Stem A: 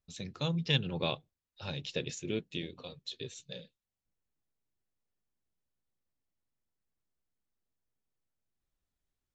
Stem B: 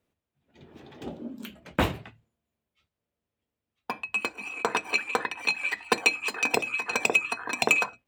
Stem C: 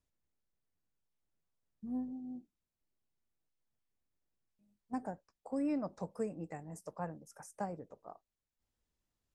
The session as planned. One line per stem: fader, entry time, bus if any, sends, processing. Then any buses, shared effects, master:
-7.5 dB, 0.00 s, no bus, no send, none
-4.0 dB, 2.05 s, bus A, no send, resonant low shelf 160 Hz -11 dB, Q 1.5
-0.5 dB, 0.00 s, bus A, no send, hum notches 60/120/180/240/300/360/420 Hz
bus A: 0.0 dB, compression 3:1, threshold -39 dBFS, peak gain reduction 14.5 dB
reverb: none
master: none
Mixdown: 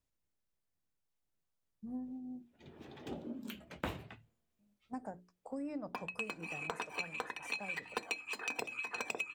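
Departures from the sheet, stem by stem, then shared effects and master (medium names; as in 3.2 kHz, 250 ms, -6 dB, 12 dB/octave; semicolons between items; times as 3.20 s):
stem A: muted; stem B: missing resonant low shelf 160 Hz -11 dB, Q 1.5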